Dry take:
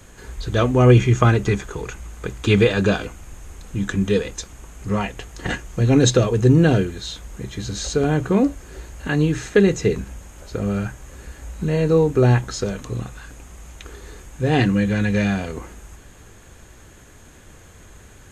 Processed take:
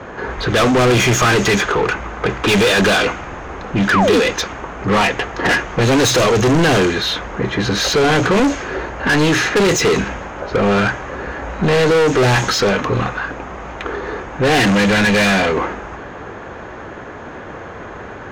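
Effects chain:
low-pass with resonance 6,100 Hz, resonance Q 2.5
low-pass that shuts in the quiet parts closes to 1,100 Hz, open at −10.5 dBFS
mid-hump overdrive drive 36 dB, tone 3,700 Hz, clips at 0 dBFS
sound drawn into the spectrogram fall, 0:03.90–0:04.20, 220–1,800 Hz −8 dBFS
soft clipping −2.5 dBFS, distortion −22 dB
level −4.5 dB

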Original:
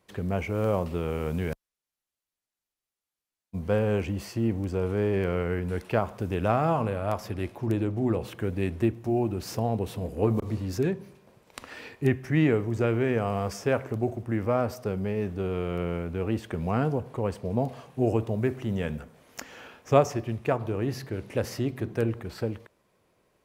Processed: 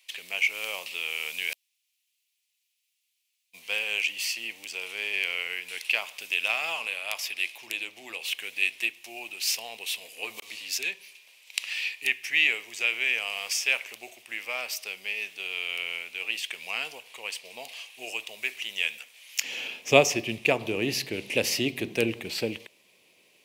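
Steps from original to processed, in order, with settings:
high-pass filter 1,400 Hz 12 dB per octave, from 0:19.44 210 Hz
high shelf with overshoot 1,900 Hz +10 dB, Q 3
level +2 dB

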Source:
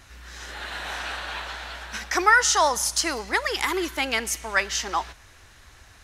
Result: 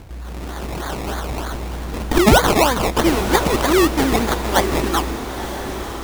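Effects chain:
0:01.54–0:02.19: lower of the sound and its delayed copy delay 0.39 ms
low shelf with overshoot 420 Hz +8 dB, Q 1.5
sample-and-hold swept by an LFO 23×, swing 60% 3.2 Hz
feedback delay with all-pass diffusion 971 ms, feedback 51%, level −9.5 dB
level +6 dB

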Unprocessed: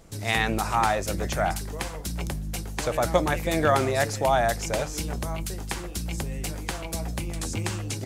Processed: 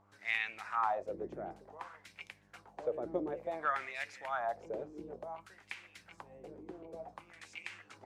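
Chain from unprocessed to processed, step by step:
LFO wah 0.56 Hz 350–2,400 Hz, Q 3.7
hum with harmonics 100 Hz, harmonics 11, −67 dBFS −4 dB per octave
level −4 dB

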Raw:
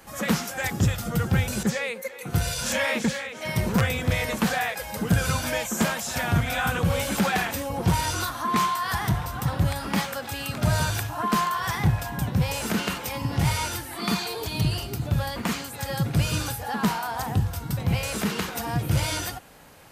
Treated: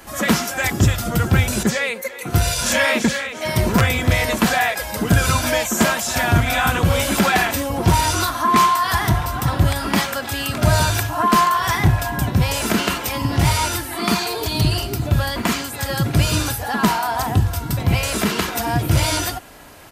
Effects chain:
comb filter 3 ms, depth 36%
level +7.5 dB

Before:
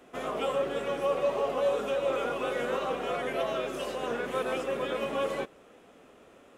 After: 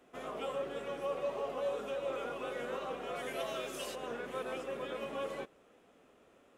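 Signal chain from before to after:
0:03.15–0:03.94: high-shelf EQ 4,400 Hz → 2,800 Hz +12 dB
level −8.5 dB

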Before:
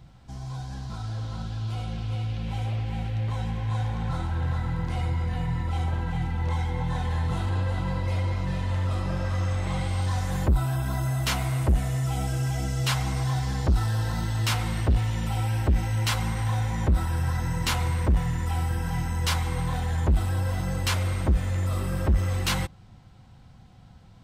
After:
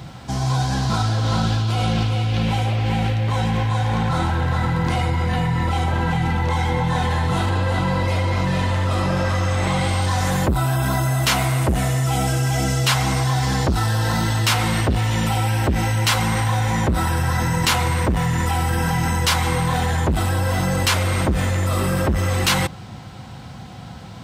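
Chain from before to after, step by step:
high-pass filter 66 Hz
low-shelf EQ 130 Hz −8.5 dB
in parallel at +3 dB: compressor whose output falls as the input rises −38 dBFS
on the sum: level +7.5 dB

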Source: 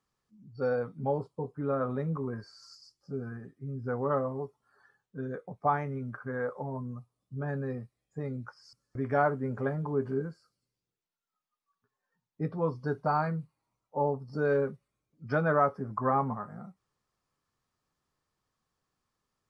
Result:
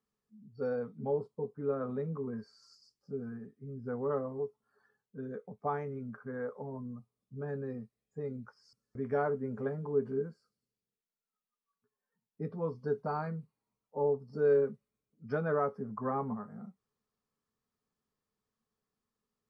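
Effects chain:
hollow resonant body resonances 220/430 Hz, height 12 dB, ringing for 70 ms
level −8.5 dB

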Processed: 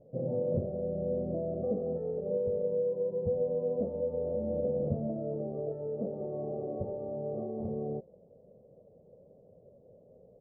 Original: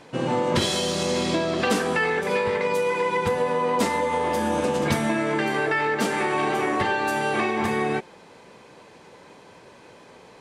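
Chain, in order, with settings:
elliptic low-pass filter 580 Hz, stop band 80 dB
comb filter 1.6 ms, depth 65%
level −7.5 dB

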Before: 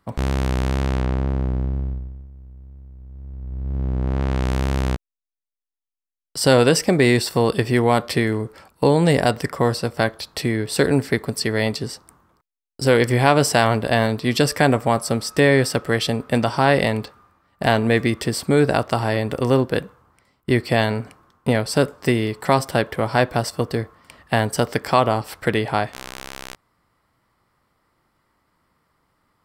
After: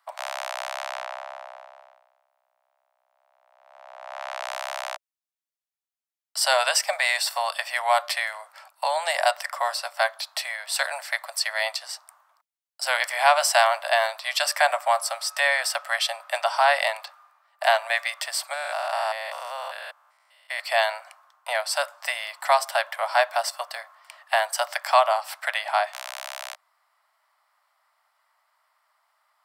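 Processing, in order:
0:18.53–0:20.60: spectrum averaged block by block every 200 ms
Butterworth high-pass 600 Hz 96 dB per octave

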